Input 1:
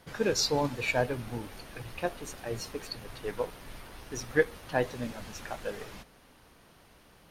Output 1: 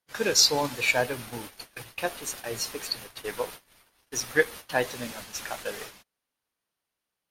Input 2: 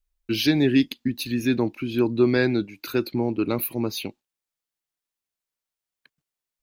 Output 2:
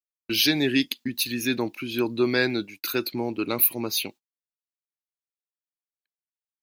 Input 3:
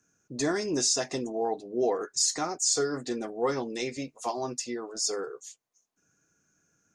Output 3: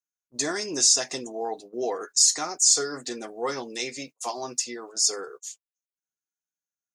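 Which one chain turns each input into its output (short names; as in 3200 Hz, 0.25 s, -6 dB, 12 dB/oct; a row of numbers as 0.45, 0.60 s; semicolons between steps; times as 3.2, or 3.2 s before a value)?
tilt +2.5 dB/oct; gate -43 dBFS, range -32 dB; normalise peaks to -6 dBFS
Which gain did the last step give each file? +3.5, 0.0, +0.5 dB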